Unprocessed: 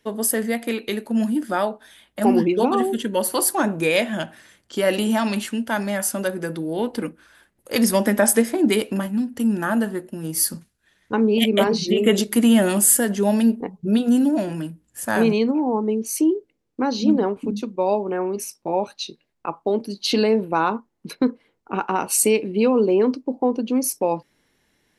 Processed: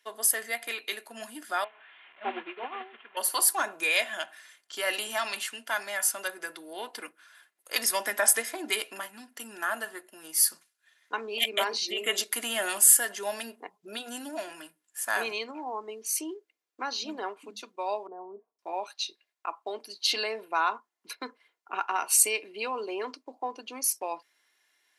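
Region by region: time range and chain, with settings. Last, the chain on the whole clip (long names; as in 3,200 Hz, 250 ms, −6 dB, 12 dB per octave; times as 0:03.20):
0:01.64–0:03.17: linear delta modulator 16 kbit/s, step −25 dBFS + expander for the loud parts 2.5 to 1, over −25 dBFS
0:18.07–0:18.59: Bessel low-pass filter 540 Hz, order 6 + comb filter 4.4 ms, depth 52%
whole clip: high-pass filter 1,000 Hz 12 dB per octave; comb filter 2.9 ms, depth 37%; level −2.5 dB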